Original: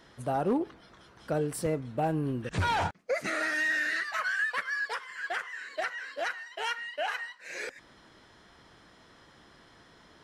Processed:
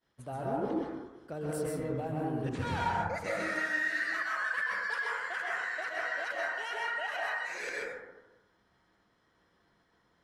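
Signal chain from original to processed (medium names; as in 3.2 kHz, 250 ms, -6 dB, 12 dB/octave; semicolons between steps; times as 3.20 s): expander -44 dBFS; reverse; compression, threshold -37 dBFS, peak gain reduction 12.5 dB; reverse; plate-style reverb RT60 1.1 s, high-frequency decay 0.25×, pre-delay 115 ms, DRR -4.5 dB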